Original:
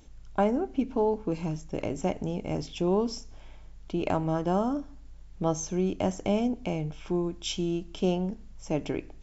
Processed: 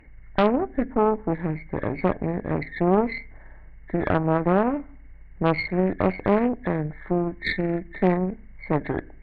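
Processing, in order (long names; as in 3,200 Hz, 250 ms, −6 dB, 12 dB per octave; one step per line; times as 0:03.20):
hearing-aid frequency compression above 1,500 Hz 4 to 1
harmonic generator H 4 −8 dB, 6 −29 dB, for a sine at −12.5 dBFS
highs frequency-modulated by the lows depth 0.28 ms
level +2.5 dB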